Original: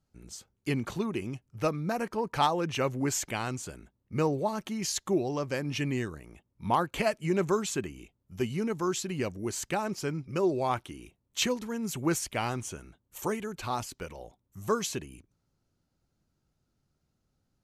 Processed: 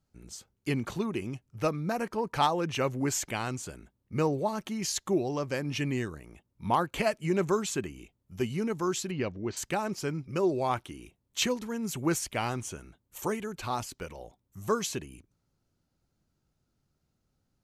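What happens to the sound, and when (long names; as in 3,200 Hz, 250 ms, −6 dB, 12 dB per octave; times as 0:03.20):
0:09.11–0:09.57: low-pass filter 4,400 Hz 24 dB per octave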